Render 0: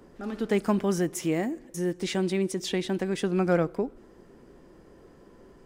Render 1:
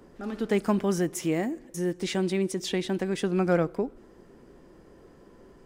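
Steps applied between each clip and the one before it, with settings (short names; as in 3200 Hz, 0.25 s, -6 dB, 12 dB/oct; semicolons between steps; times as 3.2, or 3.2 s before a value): nothing audible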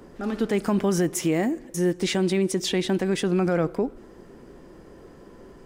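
limiter -20.5 dBFS, peak gain reduction 7.5 dB; gain +6 dB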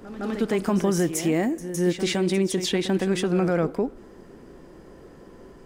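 reverse echo 0.161 s -11 dB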